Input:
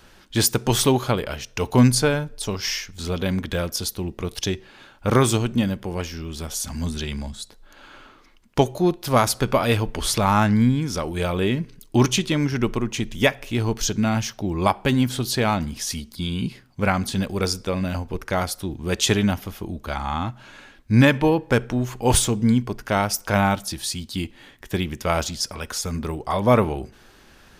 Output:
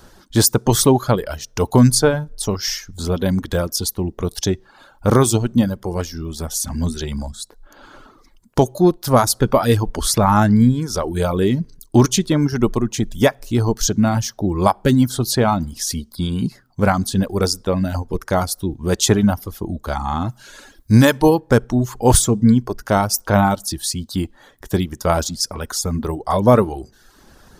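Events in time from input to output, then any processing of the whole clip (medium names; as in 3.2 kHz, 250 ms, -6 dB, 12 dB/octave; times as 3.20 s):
20.29–21.40 s: treble shelf 3.1 kHz +10.5 dB
whole clip: reverb removal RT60 0.69 s; peaking EQ 2.5 kHz -12 dB 0.98 oct; loudness maximiser +7.5 dB; trim -1 dB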